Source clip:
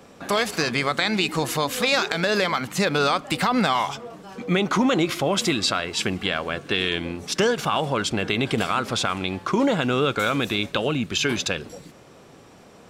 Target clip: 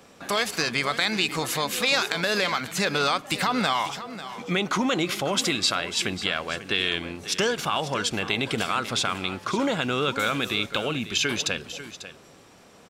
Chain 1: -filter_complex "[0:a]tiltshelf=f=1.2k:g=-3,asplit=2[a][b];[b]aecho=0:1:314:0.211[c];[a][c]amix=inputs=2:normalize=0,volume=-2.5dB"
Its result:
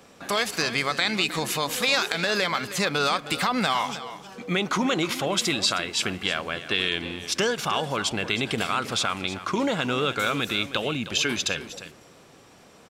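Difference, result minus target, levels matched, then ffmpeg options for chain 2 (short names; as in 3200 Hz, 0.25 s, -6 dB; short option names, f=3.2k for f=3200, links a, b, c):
echo 0.23 s early
-filter_complex "[0:a]tiltshelf=f=1.2k:g=-3,asplit=2[a][b];[b]aecho=0:1:544:0.211[c];[a][c]amix=inputs=2:normalize=0,volume=-2.5dB"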